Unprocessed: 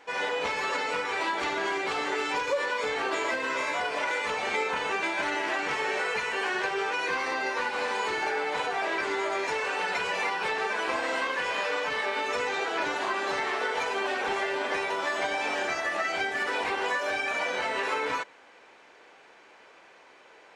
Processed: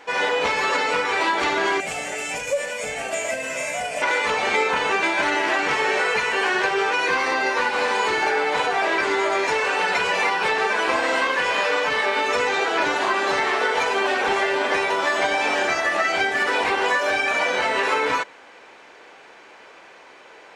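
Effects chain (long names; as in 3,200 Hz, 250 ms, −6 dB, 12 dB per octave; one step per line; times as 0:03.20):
0:01.80–0:04.02: drawn EQ curve 210 Hz 0 dB, 360 Hz −17 dB, 660 Hz +2 dB, 980 Hz −17 dB, 2,600 Hz −2 dB, 4,000 Hz −12 dB, 7,600 Hz +8 dB
level +8 dB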